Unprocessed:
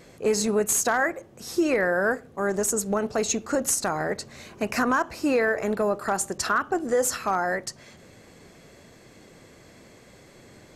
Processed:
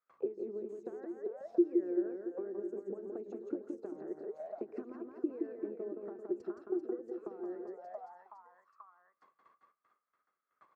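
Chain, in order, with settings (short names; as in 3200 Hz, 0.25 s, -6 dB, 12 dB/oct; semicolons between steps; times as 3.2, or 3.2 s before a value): gate with hold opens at -39 dBFS; high shelf 9100 Hz -11.5 dB; transient shaper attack +10 dB, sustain -5 dB; compressor 6:1, threshold -22 dBFS, peak gain reduction 12.5 dB; reverse bouncing-ball echo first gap 0.17 s, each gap 1.3×, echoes 5; auto-wah 350–1300 Hz, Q 16, down, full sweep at -23.5 dBFS; gain +1 dB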